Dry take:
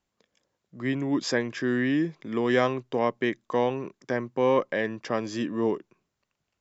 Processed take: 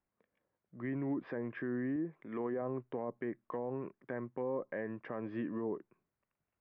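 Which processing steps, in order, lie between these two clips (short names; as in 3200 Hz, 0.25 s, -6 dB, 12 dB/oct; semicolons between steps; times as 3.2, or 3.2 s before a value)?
LPF 2200 Hz 24 dB/oct; treble ducked by the level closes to 800 Hz, closed at -20 dBFS; 1.96–2.62 low shelf 220 Hz -8.5 dB; limiter -22 dBFS, peak gain reduction 9 dB; gain -7 dB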